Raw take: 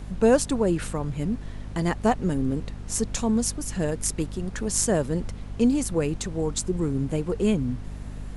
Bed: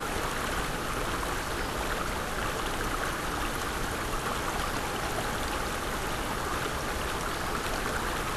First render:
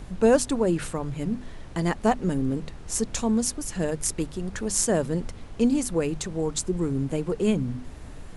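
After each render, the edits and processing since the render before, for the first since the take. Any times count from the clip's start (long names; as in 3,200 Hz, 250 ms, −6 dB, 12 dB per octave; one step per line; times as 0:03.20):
mains-hum notches 50/100/150/200/250 Hz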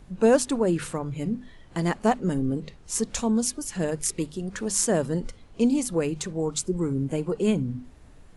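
noise reduction from a noise print 10 dB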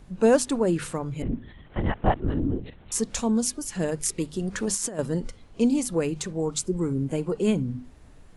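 0:01.22–0:02.92: linear-prediction vocoder at 8 kHz whisper
0:04.32–0:04.99: compressor whose output falls as the input rises −27 dBFS, ratio −0.5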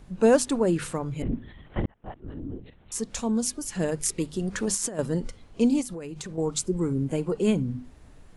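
0:01.86–0:03.77: fade in
0:05.81–0:06.38: downward compressor 16 to 1, threshold −32 dBFS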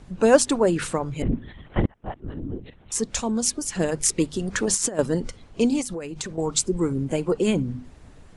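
low-pass filter 9,900 Hz 24 dB per octave
harmonic and percussive parts rebalanced percussive +7 dB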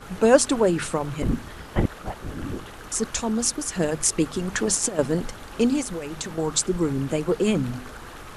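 mix in bed −10 dB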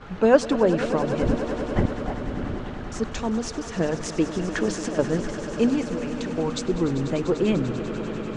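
high-frequency loss of the air 170 metres
echo that builds up and dies away 98 ms, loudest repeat 5, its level −14.5 dB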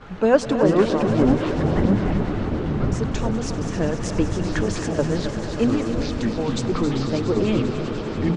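delay with pitch and tempo change per echo 310 ms, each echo −6 semitones, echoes 3
single-tap delay 268 ms −10.5 dB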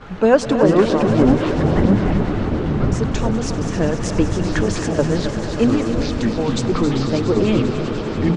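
level +4 dB
brickwall limiter −2 dBFS, peak gain reduction 2.5 dB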